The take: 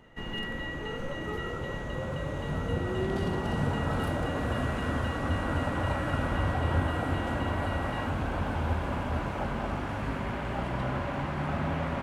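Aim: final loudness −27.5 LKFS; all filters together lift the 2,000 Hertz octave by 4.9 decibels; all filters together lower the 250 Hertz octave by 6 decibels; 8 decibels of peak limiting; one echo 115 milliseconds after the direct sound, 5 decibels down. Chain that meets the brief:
parametric band 250 Hz −8.5 dB
parametric band 2,000 Hz +6 dB
brickwall limiter −24 dBFS
single-tap delay 115 ms −5 dB
level +4.5 dB

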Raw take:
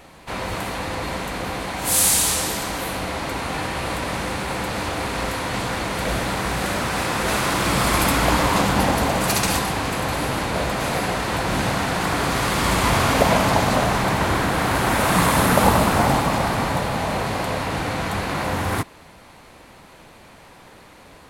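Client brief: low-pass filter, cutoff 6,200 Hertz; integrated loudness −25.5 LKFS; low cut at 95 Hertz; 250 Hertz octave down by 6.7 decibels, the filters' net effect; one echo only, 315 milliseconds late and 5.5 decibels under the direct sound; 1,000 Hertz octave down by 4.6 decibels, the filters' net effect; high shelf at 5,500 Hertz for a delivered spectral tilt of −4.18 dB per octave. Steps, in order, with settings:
high-pass filter 95 Hz
low-pass filter 6,200 Hz
parametric band 250 Hz −9 dB
parametric band 1,000 Hz −5 dB
high-shelf EQ 5,500 Hz −7.5 dB
single-tap delay 315 ms −5.5 dB
level −1 dB

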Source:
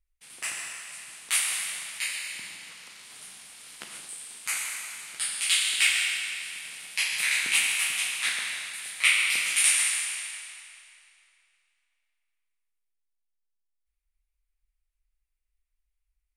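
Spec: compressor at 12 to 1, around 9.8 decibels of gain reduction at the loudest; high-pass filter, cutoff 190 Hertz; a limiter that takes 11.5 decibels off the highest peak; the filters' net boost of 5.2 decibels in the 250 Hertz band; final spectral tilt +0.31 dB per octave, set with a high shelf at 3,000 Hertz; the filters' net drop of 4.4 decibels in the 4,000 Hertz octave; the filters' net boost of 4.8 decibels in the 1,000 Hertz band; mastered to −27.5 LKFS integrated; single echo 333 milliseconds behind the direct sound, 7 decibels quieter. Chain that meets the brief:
high-pass filter 190 Hz
parametric band 250 Hz +8 dB
parametric band 1,000 Hz +7 dB
high-shelf EQ 3,000 Hz −3.5 dB
parametric band 4,000 Hz −4 dB
downward compressor 12 to 1, threshold −29 dBFS
brickwall limiter −25 dBFS
single-tap delay 333 ms −7 dB
level +6.5 dB

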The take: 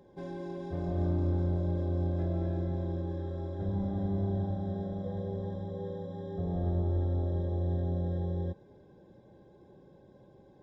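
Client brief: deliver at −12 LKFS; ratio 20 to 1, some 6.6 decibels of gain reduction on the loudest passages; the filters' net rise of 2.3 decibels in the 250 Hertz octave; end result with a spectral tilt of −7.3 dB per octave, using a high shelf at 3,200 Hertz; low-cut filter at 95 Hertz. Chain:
high-pass filter 95 Hz
parametric band 250 Hz +4 dB
high-shelf EQ 3,200 Hz +3.5 dB
downward compressor 20 to 1, threshold −33 dBFS
level +26.5 dB

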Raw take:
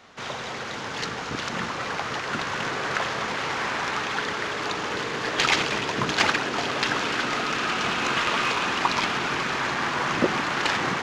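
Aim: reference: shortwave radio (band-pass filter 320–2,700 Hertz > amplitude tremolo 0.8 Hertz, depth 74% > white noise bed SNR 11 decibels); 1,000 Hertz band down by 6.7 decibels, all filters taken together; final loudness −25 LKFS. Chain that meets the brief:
band-pass filter 320–2,700 Hz
parametric band 1,000 Hz −8.5 dB
amplitude tremolo 0.8 Hz, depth 74%
white noise bed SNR 11 dB
level +8 dB

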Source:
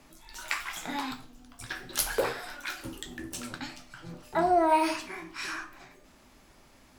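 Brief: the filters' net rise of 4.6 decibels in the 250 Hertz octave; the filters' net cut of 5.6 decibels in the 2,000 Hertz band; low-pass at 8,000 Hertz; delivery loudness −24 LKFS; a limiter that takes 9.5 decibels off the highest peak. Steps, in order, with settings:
low-pass filter 8,000 Hz
parametric band 250 Hz +7 dB
parametric band 2,000 Hz −7.5 dB
level +12 dB
brickwall limiter −11 dBFS

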